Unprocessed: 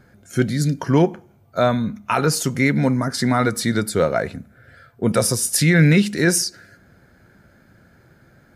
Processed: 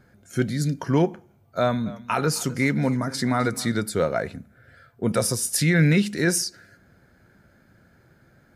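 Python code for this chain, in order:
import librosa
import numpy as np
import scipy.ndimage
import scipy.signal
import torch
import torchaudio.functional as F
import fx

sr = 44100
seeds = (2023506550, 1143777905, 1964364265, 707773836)

y = fx.echo_warbled(x, sr, ms=259, feedback_pct=34, rate_hz=2.8, cents=74, wet_db=-19, at=(1.6, 3.72))
y = F.gain(torch.from_numpy(y), -4.5).numpy()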